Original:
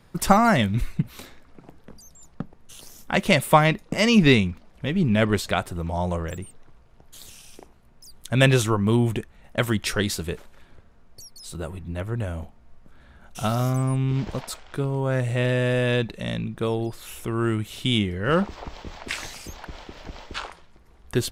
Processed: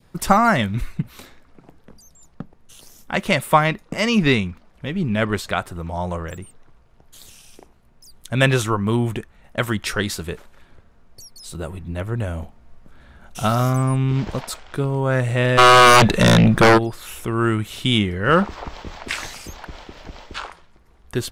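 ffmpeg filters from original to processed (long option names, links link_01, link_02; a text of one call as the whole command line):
ffmpeg -i in.wav -filter_complex "[0:a]asplit=3[link_01][link_02][link_03];[link_01]afade=type=out:start_time=15.57:duration=0.02[link_04];[link_02]aeval=exprs='0.237*sin(PI/2*3.98*val(0)/0.237)':channel_layout=same,afade=type=in:start_time=15.57:duration=0.02,afade=type=out:start_time=16.77:duration=0.02[link_05];[link_03]afade=type=in:start_time=16.77:duration=0.02[link_06];[link_04][link_05][link_06]amix=inputs=3:normalize=0,adynamicequalizer=threshold=0.0178:dfrequency=1300:dqfactor=1.1:tfrequency=1300:tqfactor=1.1:attack=5:release=100:ratio=0.375:range=2.5:mode=boostabove:tftype=bell,dynaudnorm=framelen=650:gausssize=7:maxgain=4.5dB" out.wav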